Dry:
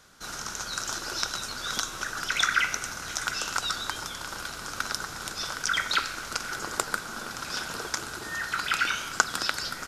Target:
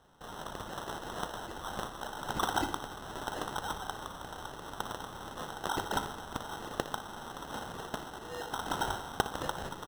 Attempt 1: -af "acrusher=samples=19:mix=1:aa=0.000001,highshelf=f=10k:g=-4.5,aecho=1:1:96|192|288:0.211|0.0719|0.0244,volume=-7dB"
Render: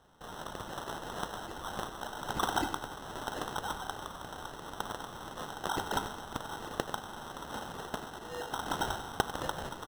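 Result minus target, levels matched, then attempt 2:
echo 36 ms late
-af "acrusher=samples=19:mix=1:aa=0.000001,highshelf=f=10k:g=-4.5,aecho=1:1:60|120|180:0.211|0.0719|0.0244,volume=-7dB"

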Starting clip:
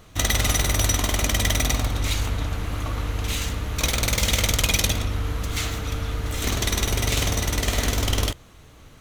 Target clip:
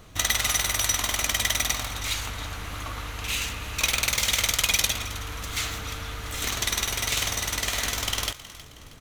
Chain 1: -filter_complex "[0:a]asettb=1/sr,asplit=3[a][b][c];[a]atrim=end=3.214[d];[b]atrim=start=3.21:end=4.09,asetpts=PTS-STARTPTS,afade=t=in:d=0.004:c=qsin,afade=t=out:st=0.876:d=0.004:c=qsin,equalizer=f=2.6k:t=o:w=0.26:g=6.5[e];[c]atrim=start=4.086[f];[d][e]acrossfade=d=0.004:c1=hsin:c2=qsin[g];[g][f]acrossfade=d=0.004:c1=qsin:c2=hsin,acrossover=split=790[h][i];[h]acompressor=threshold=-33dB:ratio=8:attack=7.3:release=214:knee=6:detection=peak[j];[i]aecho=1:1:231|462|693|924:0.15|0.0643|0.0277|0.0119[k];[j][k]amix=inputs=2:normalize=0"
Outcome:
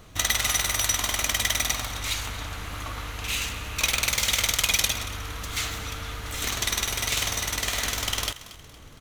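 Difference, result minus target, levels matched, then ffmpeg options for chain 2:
echo 86 ms early
-filter_complex "[0:a]asettb=1/sr,asplit=3[a][b][c];[a]atrim=end=3.214[d];[b]atrim=start=3.21:end=4.09,asetpts=PTS-STARTPTS,afade=t=in:d=0.004:c=qsin,afade=t=out:st=0.876:d=0.004:c=qsin,equalizer=f=2.6k:t=o:w=0.26:g=6.5[e];[c]atrim=start=4.086[f];[d][e]acrossfade=d=0.004:c1=hsin:c2=qsin[g];[g][f]acrossfade=d=0.004:c1=qsin:c2=hsin,acrossover=split=790[h][i];[h]acompressor=threshold=-33dB:ratio=8:attack=7.3:release=214:knee=6:detection=peak[j];[i]aecho=1:1:317|634|951|1268:0.15|0.0643|0.0277|0.0119[k];[j][k]amix=inputs=2:normalize=0"

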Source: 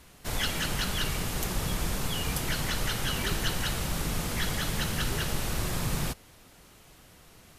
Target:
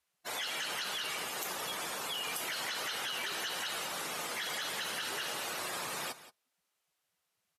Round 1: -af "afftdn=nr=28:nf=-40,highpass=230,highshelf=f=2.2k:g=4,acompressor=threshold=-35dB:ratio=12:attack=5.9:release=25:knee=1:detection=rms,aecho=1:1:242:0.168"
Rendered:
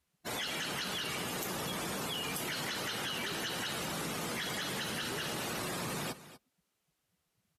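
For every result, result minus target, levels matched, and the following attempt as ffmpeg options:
250 Hz band +10.5 dB; echo 66 ms late
-af "afftdn=nr=28:nf=-40,highpass=580,highshelf=f=2.2k:g=4,acompressor=threshold=-35dB:ratio=12:attack=5.9:release=25:knee=1:detection=rms,aecho=1:1:242:0.168"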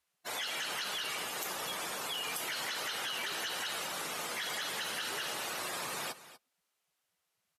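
echo 66 ms late
-af "afftdn=nr=28:nf=-40,highpass=580,highshelf=f=2.2k:g=4,acompressor=threshold=-35dB:ratio=12:attack=5.9:release=25:knee=1:detection=rms,aecho=1:1:176:0.168"

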